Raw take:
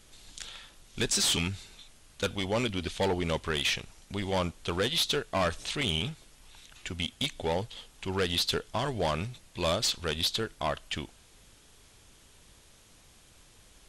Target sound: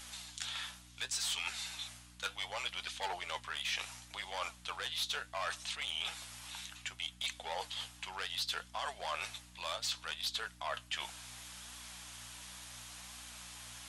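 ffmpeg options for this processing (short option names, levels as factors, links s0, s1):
-af "highpass=f=740:w=0.5412,highpass=f=740:w=1.3066,areverse,acompressor=threshold=0.00355:ratio=4,areverse,aeval=exprs='val(0)+0.000447*(sin(2*PI*60*n/s)+sin(2*PI*2*60*n/s)/2+sin(2*PI*3*60*n/s)/3+sin(2*PI*4*60*n/s)/4+sin(2*PI*5*60*n/s)/5)':c=same,flanger=delay=3.4:depth=7.9:regen=58:speed=0.68:shape=triangular,volume=5.01"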